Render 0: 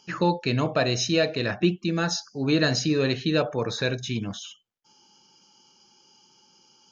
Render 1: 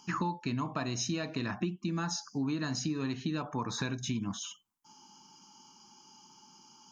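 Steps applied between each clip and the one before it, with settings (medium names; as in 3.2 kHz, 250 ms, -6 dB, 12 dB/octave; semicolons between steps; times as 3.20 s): FFT filter 110 Hz 0 dB, 270 Hz +6 dB, 530 Hz -12 dB, 1 kHz +10 dB, 1.5 kHz -1 dB, 4.1 kHz -4 dB, 8 kHz +6 dB; compression 10:1, threshold -30 dBFS, peak gain reduction 15.5 dB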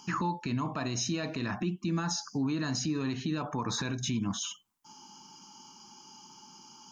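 peak limiter -28 dBFS, peak gain reduction 8 dB; trim +5 dB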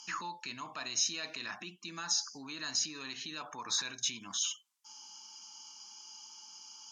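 band-pass filter 5.6 kHz, Q 0.55; trim +3.5 dB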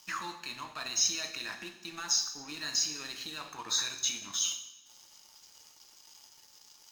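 coarse spectral quantiser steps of 15 dB; crossover distortion -51 dBFS; two-slope reverb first 0.76 s, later 2.5 s, from -20 dB, DRR 4.5 dB; trim +3.5 dB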